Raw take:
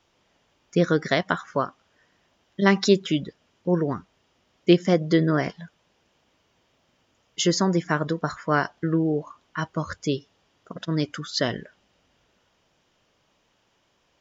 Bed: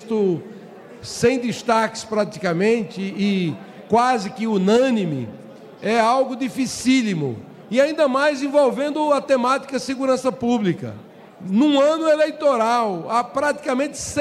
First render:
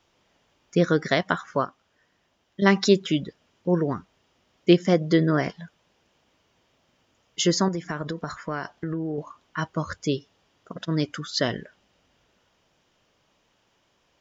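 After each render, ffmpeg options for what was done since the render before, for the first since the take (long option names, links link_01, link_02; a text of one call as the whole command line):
ffmpeg -i in.wav -filter_complex "[0:a]asettb=1/sr,asplit=3[link_01][link_02][link_03];[link_01]atrim=end=7.684[link_04];[link_02]atrim=start=7.68:end=9.18,asetpts=PTS-STARTPTS,afade=type=in:duration=0.004:curve=qsin,afade=type=out:start_time=1.496:duration=0.004:curve=qsin,acompressor=threshold=-26dB:ratio=4:attack=3.2:release=140:knee=1:detection=peak[link_05];[link_03]atrim=start=9.176[link_06];[link_04][link_05]acrossfade=duration=0.004:curve1=hsin:curve2=qsin[link_07];[link_07][link_06]acrossfade=duration=0.004:curve1=qsin:curve2=hsin,asplit=3[link_08][link_09][link_10];[link_08]atrim=end=1.652[link_11];[link_09]atrim=start=1.648:end=2.622,asetpts=PTS-STARTPTS,volume=-3.5dB[link_12];[link_10]atrim=start=2.618[link_13];[link_11][link_12]acrossfade=duration=0.004:curve1=hsin:curve2=hsin[link_14];[link_14][link_13]acrossfade=duration=0.004:curve1=hsin:curve2=hsin" out.wav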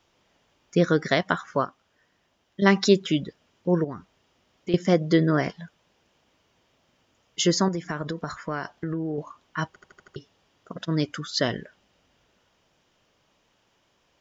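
ffmpeg -i in.wav -filter_complex "[0:a]asettb=1/sr,asplit=3[link_01][link_02][link_03];[link_01]atrim=end=3.844[link_04];[link_02]atrim=start=3.84:end=4.74,asetpts=PTS-STARTPTS,afade=type=in:duration=0.004:curve=qsin,afade=type=out:start_time=0.896:duration=0.004:curve=qsin,acompressor=threshold=-36dB:ratio=2:attack=3.2:release=140:knee=1:detection=peak[link_05];[link_03]atrim=start=4.736[link_06];[link_04][link_05]acrossfade=duration=0.004:curve1=hsin:curve2=qsin[link_07];[link_07][link_06]acrossfade=duration=0.004:curve1=qsin:curve2=hsin,asplit=7[link_08][link_09][link_10][link_11][link_12][link_13][link_14];[link_08]atrim=end=9.762[link_15];[link_09]atrim=start=9.678:end=9.762[link_16];[link_10]atrim=start=9.678:end=9.762[link_17];[link_11]atrim=start=9.678:end=9.762[link_18];[link_12]atrim=start=9.678:end=9.762[link_19];[link_13]atrim=start=9.678:end=9.762[link_20];[link_14]atrim=start=10.158[link_21];[link_15][link_16]acrossfade=duration=0.004:curve1=hsin:curve2=hsin[link_22];[link_22][link_17]acrossfade=duration=0.004:curve1=hsin:curve2=hsin[link_23];[link_23][link_18]acrossfade=duration=0.004:curve1=hsin:curve2=hsin[link_24];[link_24][link_19]acrossfade=duration=0.004:curve1=hsin:curve2=hsin[link_25];[link_25][link_20]acrossfade=duration=0.004:curve1=hsin:curve2=hsin[link_26];[link_26][link_21]acrossfade=duration=0.004:curve1=hsin:curve2=hsin" out.wav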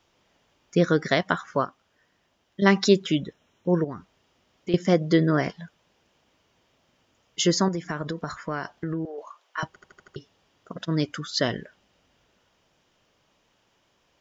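ffmpeg -i in.wav -filter_complex "[0:a]asettb=1/sr,asplit=3[link_01][link_02][link_03];[link_01]atrim=end=3.154[link_04];[link_02]atrim=start=3.15:end=3.85,asetpts=PTS-STARTPTS,afade=type=in:duration=0.004:curve=qsin,afade=type=out:start_time=0.696:duration=0.004:curve=qsin,asuperstop=centerf=4700:order=8:qfactor=4.8[link_05];[link_03]atrim=start=3.846[link_06];[link_04][link_05]acrossfade=duration=0.004:curve1=hsin:curve2=qsin[link_07];[link_07][link_06]acrossfade=duration=0.004:curve1=qsin:curve2=hsin,asettb=1/sr,asplit=3[link_08][link_09][link_10];[link_08]atrim=end=9.054[link_11];[link_09]atrim=start=9.05:end=9.63,asetpts=PTS-STARTPTS,afade=type=in:duration=0.004:curve=qsin,afade=type=out:start_time=0.576:duration=0.004:curve=qsin,highpass=frequency=480:width=0.5412,highpass=frequency=480:width=1.3066[link_12];[link_10]atrim=start=9.626[link_13];[link_11][link_12]acrossfade=duration=0.004:curve1=hsin:curve2=qsin[link_14];[link_14][link_13]acrossfade=duration=0.004:curve1=qsin:curve2=hsin" out.wav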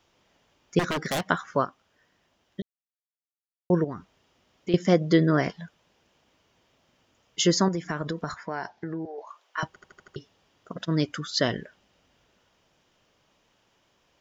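ffmpeg -i in.wav -filter_complex "[0:a]asettb=1/sr,asplit=3[link_01][link_02][link_03];[link_01]atrim=end=0.794[link_04];[link_02]atrim=start=0.79:end=1.26,asetpts=PTS-STARTPTS,afade=type=in:duration=0.004:curve=qsin,afade=type=out:start_time=0.466:duration=0.004:curve=qsin,aeval=exprs='0.0841*(abs(mod(val(0)/0.0841+3,4)-2)-1)':channel_layout=same[link_05];[link_03]atrim=start=1.256[link_06];[link_04][link_05]acrossfade=duration=0.004:curve1=hsin:curve2=qsin[link_07];[link_07][link_06]acrossfade=duration=0.004:curve1=qsin:curve2=hsin,asettb=1/sr,asplit=3[link_08][link_09][link_10];[link_08]atrim=end=8.344[link_11];[link_09]atrim=start=8.34:end=9.29,asetpts=PTS-STARTPTS,afade=type=in:duration=0.004:curve=qsin,afade=type=out:start_time=0.946:duration=0.004:curve=qsin,highpass=100,equalizer=frequency=150:width_type=q:width=4:gain=-7,equalizer=frequency=280:width_type=q:width=4:gain=-6,equalizer=frequency=540:width_type=q:width=4:gain=-5,equalizer=frequency=830:width_type=q:width=4:gain=7,equalizer=frequency=1200:width_type=q:width=4:gain=-9,equalizer=frequency=3000:width_type=q:width=4:gain=-8,lowpass=frequency=5900:width=0.5412,lowpass=frequency=5900:width=1.3066[link_12];[link_10]atrim=start=9.286[link_13];[link_11][link_12]acrossfade=duration=0.004:curve1=hsin:curve2=qsin[link_14];[link_14][link_13]acrossfade=duration=0.004:curve1=qsin:curve2=hsin,asplit=3[link_15][link_16][link_17];[link_15]atrim=end=2.62,asetpts=PTS-STARTPTS,afade=type=out:start_time=2.616:duration=0.004:curve=hsin[link_18];[link_16]atrim=start=2.62:end=3.7,asetpts=PTS-STARTPTS,volume=0[link_19];[link_17]atrim=start=3.7,asetpts=PTS-STARTPTS,afade=type=in:duration=0.004:curve=hsin[link_20];[link_18][link_19][link_20]concat=n=3:v=0:a=1" out.wav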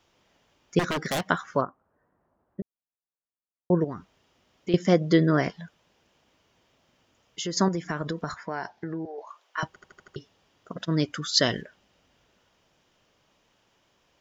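ffmpeg -i in.wav -filter_complex "[0:a]asplit=3[link_01][link_02][link_03];[link_01]afade=type=out:start_time=1.6:duration=0.02[link_04];[link_02]lowpass=frequency=1300:width=0.5412,lowpass=frequency=1300:width=1.3066,afade=type=in:start_time=1.6:duration=0.02,afade=type=out:start_time=3.8:duration=0.02[link_05];[link_03]afade=type=in:start_time=3.8:duration=0.02[link_06];[link_04][link_05][link_06]amix=inputs=3:normalize=0,asettb=1/sr,asplit=3[link_07][link_08][link_09];[link_07]atrim=end=5.484[link_10];[link_08]atrim=start=5.48:end=7.57,asetpts=PTS-STARTPTS,afade=type=in:duration=0.004:curve=qsin,afade=type=out:start_time=2.086:duration=0.004:curve=qsin,acompressor=threshold=-36dB:ratio=2:attack=3.2:release=140:knee=1:detection=peak[link_11];[link_09]atrim=start=7.566[link_12];[link_10][link_11]acrossfade=duration=0.004:curve1=hsin:curve2=qsin[link_13];[link_13][link_12]acrossfade=duration=0.004:curve1=qsin:curve2=hsin,asettb=1/sr,asplit=3[link_14][link_15][link_16];[link_14]atrim=end=11.224[link_17];[link_15]atrim=start=11.22:end=11.62,asetpts=PTS-STARTPTS,afade=type=in:duration=0.004:curve=qsin,afade=type=out:start_time=0.396:duration=0.004:curve=qsin,highshelf=frequency=3400:gain=9[link_18];[link_16]atrim=start=11.616[link_19];[link_17][link_18]acrossfade=duration=0.004:curve1=hsin:curve2=qsin[link_20];[link_20][link_19]acrossfade=duration=0.004:curve1=qsin:curve2=hsin" out.wav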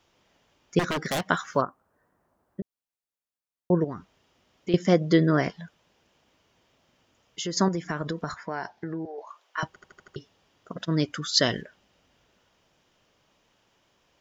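ffmpeg -i in.wav -filter_complex "[0:a]asettb=1/sr,asplit=3[link_01][link_02][link_03];[link_01]atrim=end=1.334[link_04];[link_02]atrim=start=1.33:end=2.6,asetpts=PTS-STARTPTS,afade=type=in:duration=0.004:curve=qsin,afade=type=out:start_time=1.266:duration=0.004:curve=qsin,highshelf=frequency=2300:gain=9.5[link_05];[link_03]atrim=start=2.596[link_06];[link_04][link_05]acrossfade=duration=0.004:curve1=hsin:curve2=qsin[link_07];[link_07][link_06]acrossfade=duration=0.004:curve1=qsin:curve2=hsin" out.wav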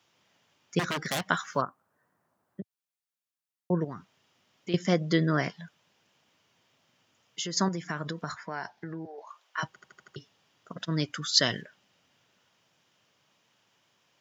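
ffmpeg -i in.wav -af "highpass=frequency=110:width=0.5412,highpass=frequency=110:width=1.3066,equalizer=frequency=390:width=0.53:gain=-6.5" out.wav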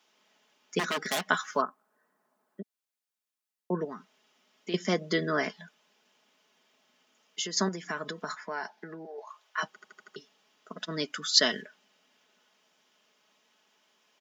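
ffmpeg -i in.wav -af "highpass=frequency=220:width=0.5412,highpass=frequency=220:width=1.3066,aecho=1:1:4.7:0.47" out.wav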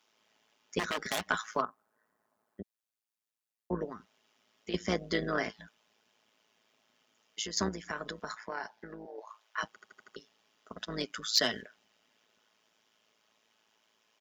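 ffmpeg -i in.wav -af "tremolo=f=110:d=0.71,asoftclip=type=tanh:threshold=-15dB" out.wav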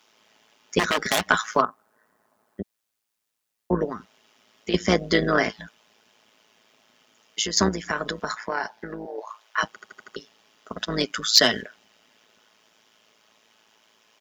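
ffmpeg -i in.wav -af "volume=11dB" out.wav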